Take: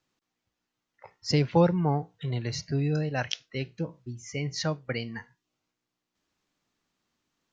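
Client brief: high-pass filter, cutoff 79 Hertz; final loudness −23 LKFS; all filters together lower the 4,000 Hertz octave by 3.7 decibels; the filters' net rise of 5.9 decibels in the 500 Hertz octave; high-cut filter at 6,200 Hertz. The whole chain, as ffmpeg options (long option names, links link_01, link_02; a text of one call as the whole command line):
ffmpeg -i in.wav -af "highpass=79,lowpass=6200,equalizer=frequency=500:width_type=o:gain=6.5,equalizer=frequency=4000:width_type=o:gain=-4,volume=3.5dB" out.wav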